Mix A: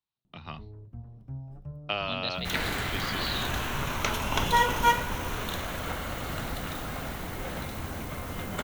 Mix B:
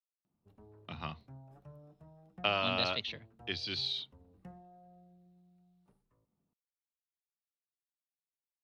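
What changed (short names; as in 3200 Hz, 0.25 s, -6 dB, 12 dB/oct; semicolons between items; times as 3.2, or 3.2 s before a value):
speech: entry +0.55 s; first sound: add HPF 630 Hz 6 dB/oct; second sound: muted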